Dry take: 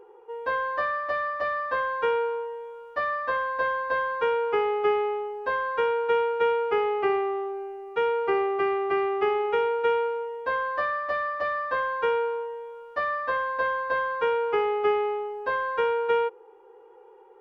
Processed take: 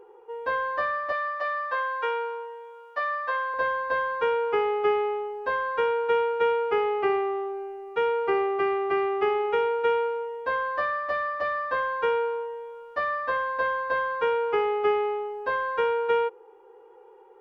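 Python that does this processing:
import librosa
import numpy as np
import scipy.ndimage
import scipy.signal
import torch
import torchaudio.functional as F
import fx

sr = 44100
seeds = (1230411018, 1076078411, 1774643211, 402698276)

y = fx.highpass(x, sr, hz=590.0, slope=12, at=(1.12, 3.54))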